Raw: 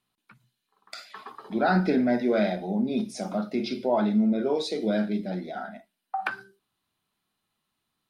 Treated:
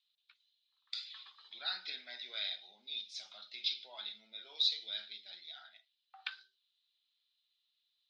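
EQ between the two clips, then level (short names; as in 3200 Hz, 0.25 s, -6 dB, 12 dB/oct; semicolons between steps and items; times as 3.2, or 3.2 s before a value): ladder band-pass 4100 Hz, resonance 65%; air absorption 140 m; +12.0 dB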